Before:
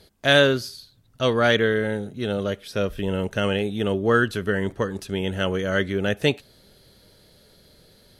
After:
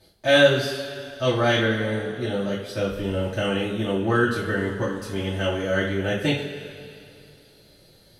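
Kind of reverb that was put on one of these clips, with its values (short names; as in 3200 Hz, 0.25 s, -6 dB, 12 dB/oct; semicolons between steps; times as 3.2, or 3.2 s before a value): two-slope reverb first 0.37 s, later 2.6 s, from -15 dB, DRR -8.5 dB; gain -9.5 dB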